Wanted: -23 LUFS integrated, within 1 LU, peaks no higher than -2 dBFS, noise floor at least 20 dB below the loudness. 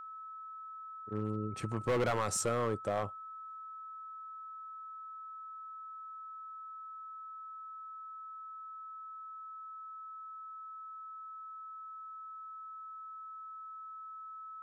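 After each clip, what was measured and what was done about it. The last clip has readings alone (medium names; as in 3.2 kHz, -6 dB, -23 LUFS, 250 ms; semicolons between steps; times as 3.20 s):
clipped samples 0.5%; clipping level -26.5 dBFS; steady tone 1.3 kHz; tone level -44 dBFS; loudness -41.0 LUFS; peak level -26.5 dBFS; loudness target -23.0 LUFS
-> clip repair -26.5 dBFS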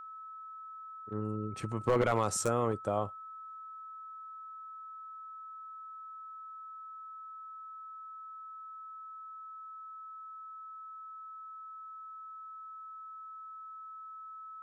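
clipped samples 0.0%; steady tone 1.3 kHz; tone level -44 dBFS
-> band-stop 1.3 kHz, Q 30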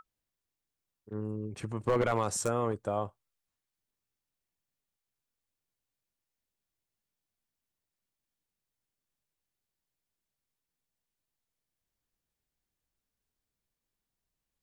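steady tone not found; loudness -32.5 LUFS; peak level -17.0 dBFS; loudness target -23.0 LUFS
-> trim +9.5 dB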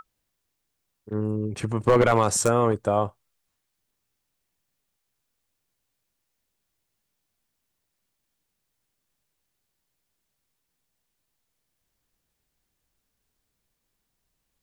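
loudness -23.0 LUFS; peak level -7.5 dBFS; noise floor -79 dBFS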